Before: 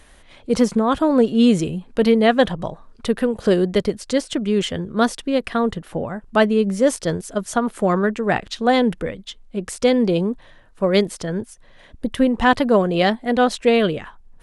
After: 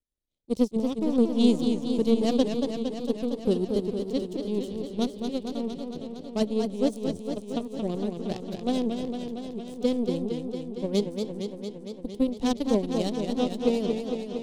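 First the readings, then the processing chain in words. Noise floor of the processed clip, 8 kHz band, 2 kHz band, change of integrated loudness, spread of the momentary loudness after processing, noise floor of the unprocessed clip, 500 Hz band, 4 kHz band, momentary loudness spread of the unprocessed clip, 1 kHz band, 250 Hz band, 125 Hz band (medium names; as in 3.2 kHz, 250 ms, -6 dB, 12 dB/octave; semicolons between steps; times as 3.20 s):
-44 dBFS, -12.0 dB, -22.0 dB, -8.5 dB, 10 LU, -49 dBFS, -9.0 dB, -9.5 dB, 13 LU, -16.0 dB, -6.5 dB, -9.0 dB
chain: power-law waveshaper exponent 2; FFT filter 400 Hz 0 dB, 1.6 kHz -25 dB, 3.9 kHz -3 dB; modulated delay 229 ms, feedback 75%, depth 109 cents, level -6 dB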